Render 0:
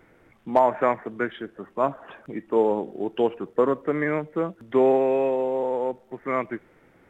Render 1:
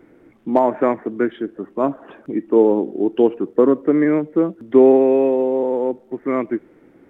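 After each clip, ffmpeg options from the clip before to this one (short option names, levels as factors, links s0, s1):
-af "equalizer=f=300:w=1:g=14,volume=0.841"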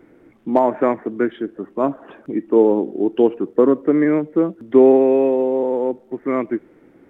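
-af anull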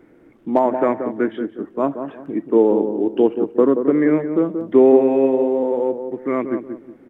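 -filter_complex "[0:a]asplit=2[s0][s1];[s1]adelay=180,lowpass=f=1000:p=1,volume=0.447,asplit=2[s2][s3];[s3]adelay=180,lowpass=f=1000:p=1,volume=0.34,asplit=2[s4][s5];[s5]adelay=180,lowpass=f=1000:p=1,volume=0.34,asplit=2[s6][s7];[s7]adelay=180,lowpass=f=1000:p=1,volume=0.34[s8];[s0][s2][s4][s6][s8]amix=inputs=5:normalize=0,volume=0.891"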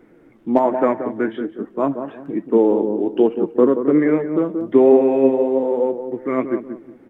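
-af "flanger=delay=3.8:depth=5.9:regen=61:speed=1.2:shape=triangular,volume=1.68"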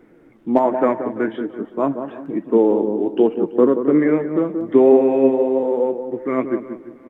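-af "aecho=1:1:335|670|1005:0.112|0.037|0.0122"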